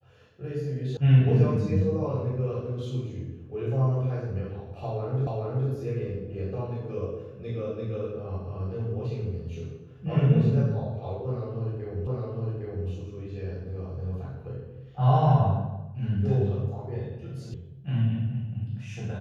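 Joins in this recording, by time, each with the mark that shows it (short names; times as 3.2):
0.97 sound cut off
5.27 repeat of the last 0.42 s
12.07 repeat of the last 0.81 s
17.54 sound cut off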